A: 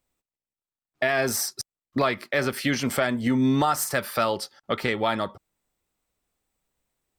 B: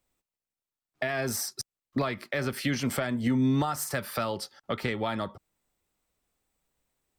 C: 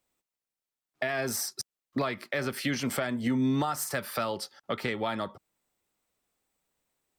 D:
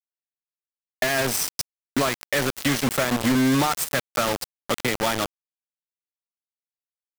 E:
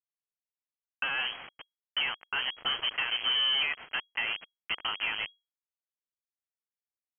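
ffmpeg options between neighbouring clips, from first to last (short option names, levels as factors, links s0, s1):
-filter_complex "[0:a]acrossover=split=220[s0][s1];[s1]acompressor=threshold=0.0224:ratio=2[s2];[s0][s2]amix=inputs=2:normalize=0"
-af "lowshelf=f=100:g=-11.5"
-af "acrusher=bits=4:mix=0:aa=0.000001,volume=2.11"
-af "lowpass=f=2800:t=q:w=0.5098,lowpass=f=2800:t=q:w=0.6013,lowpass=f=2800:t=q:w=0.9,lowpass=f=2800:t=q:w=2.563,afreqshift=-3300,volume=0.398"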